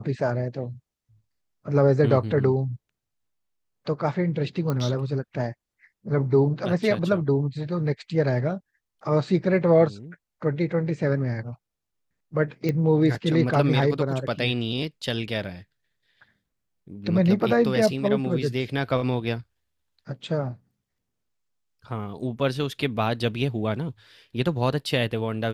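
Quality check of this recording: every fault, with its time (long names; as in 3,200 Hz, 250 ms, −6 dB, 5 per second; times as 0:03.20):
0:04.70: click −15 dBFS
0:12.69: click −14 dBFS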